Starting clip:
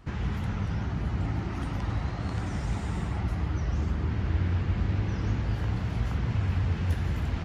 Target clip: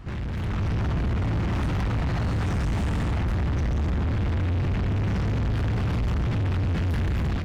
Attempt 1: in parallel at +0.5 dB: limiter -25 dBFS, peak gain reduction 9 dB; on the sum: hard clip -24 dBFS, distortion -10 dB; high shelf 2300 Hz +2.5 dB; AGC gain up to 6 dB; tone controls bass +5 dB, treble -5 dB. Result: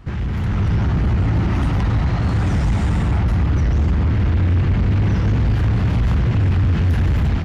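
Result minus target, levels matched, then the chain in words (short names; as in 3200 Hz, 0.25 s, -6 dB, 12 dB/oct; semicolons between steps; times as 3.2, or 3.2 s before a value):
hard clip: distortion -5 dB
in parallel at +0.5 dB: limiter -25 dBFS, peak gain reduction 9 dB; on the sum: hard clip -33.5 dBFS, distortion -5 dB; high shelf 2300 Hz +2.5 dB; AGC gain up to 6 dB; tone controls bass +5 dB, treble -5 dB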